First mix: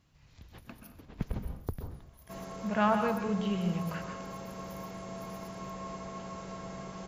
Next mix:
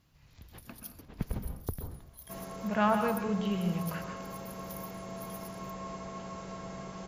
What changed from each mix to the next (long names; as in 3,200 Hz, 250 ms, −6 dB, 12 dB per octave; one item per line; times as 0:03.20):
first sound +11.0 dB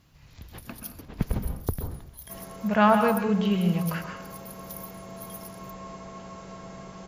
speech +7.5 dB
first sound +6.0 dB